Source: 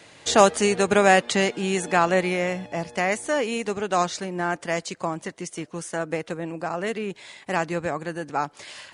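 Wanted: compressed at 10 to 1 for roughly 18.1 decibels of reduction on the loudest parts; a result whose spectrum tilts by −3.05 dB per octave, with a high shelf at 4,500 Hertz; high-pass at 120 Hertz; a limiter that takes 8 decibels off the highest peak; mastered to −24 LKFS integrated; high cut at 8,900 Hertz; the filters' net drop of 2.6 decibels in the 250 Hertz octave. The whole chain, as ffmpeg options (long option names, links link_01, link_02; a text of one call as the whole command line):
ffmpeg -i in.wav -af "highpass=120,lowpass=8900,equalizer=frequency=250:width_type=o:gain=-3.5,highshelf=frequency=4500:gain=6.5,acompressor=threshold=-29dB:ratio=10,volume=11.5dB,alimiter=limit=-11dB:level=0:latency=1" out.wav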